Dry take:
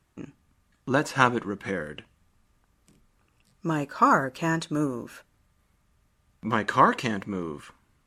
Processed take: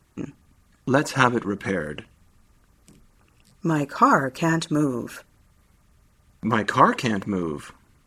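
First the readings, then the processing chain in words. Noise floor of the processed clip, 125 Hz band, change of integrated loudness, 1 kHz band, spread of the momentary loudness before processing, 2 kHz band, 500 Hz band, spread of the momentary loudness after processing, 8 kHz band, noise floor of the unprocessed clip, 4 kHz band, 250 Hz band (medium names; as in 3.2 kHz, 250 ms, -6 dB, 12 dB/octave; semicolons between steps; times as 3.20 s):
-61 dBFS, +5.0 dB, +3.0 dB, +2.5 dB, 21 LU, +2.5 dB, +4.0 dB, 18 LU, +5.0 dB, -69 dBFS, +4.0 dB, +5.0 dB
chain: in parallel at -1 dB: compression, threshold -31 dBFS, peak gain reduction 17 dB; on the sum: LFO notch sine 9.7 Hz 620–3700 Hz; trim +2.5 dB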